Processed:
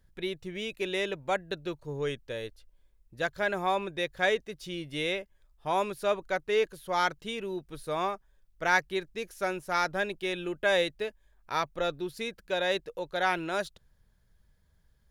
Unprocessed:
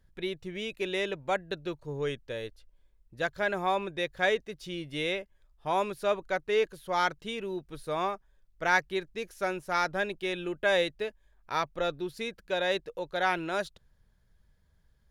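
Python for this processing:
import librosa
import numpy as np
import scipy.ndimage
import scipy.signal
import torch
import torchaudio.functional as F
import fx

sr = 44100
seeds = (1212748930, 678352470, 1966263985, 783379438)

y = fx.high_shelf(x, sr, hz=7400.0, db=4.5)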